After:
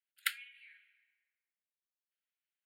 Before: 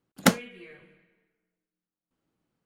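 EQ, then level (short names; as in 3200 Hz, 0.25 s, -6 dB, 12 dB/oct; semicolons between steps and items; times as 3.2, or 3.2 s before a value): steep high-pass 1300 Hz 96 dB/oct; fixed phaser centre 2600 Hz, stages 4; -5.5 dB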